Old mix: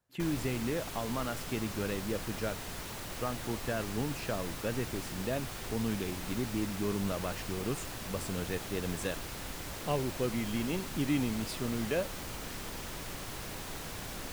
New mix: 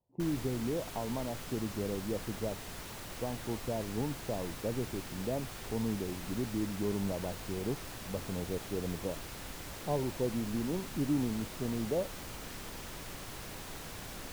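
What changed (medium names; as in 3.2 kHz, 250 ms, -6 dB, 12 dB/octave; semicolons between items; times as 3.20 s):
speech: add elliptic low-pass 950 Hz; background -3.0 dB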